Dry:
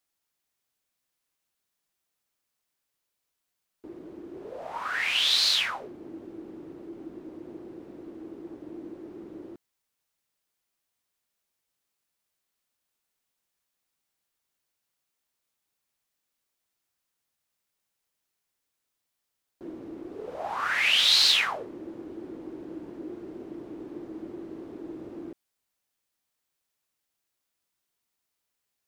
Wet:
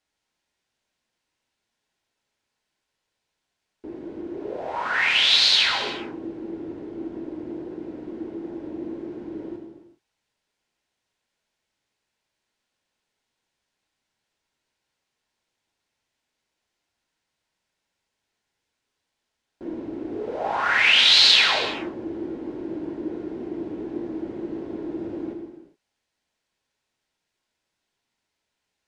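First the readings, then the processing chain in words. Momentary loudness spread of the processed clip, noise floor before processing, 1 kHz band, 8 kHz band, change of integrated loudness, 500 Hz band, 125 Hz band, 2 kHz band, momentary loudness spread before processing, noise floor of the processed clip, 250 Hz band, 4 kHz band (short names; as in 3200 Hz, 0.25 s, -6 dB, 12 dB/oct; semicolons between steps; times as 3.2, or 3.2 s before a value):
21 LU, -83 dBFS, +6.5 dB, +1.5 dB, +2.5 dB, +8.0 dB, +8.0 dB, +7.0 dB, 22 LU, -81 dBFS, +8.5 dB, +6.0 dB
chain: air absorption 89 m; notch 1200 Hz, Q 7.6; non-linear reverb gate 0.44 s falling, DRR 1.5 dB; gain +6 dB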